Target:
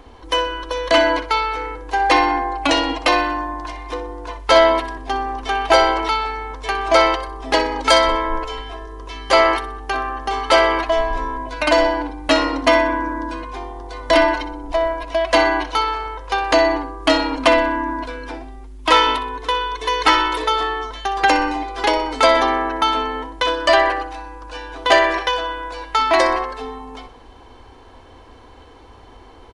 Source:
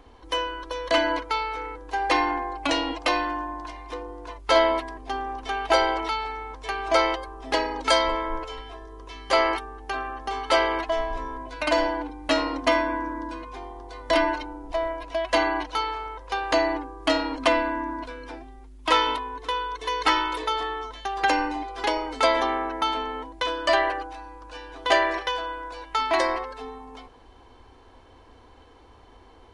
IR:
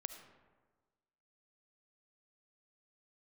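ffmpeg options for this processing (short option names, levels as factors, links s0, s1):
-af "aecho=1:1:62|124|186|248:0.2|0.0838|0.0352|0.0148,acontrast=56,volume=1.19"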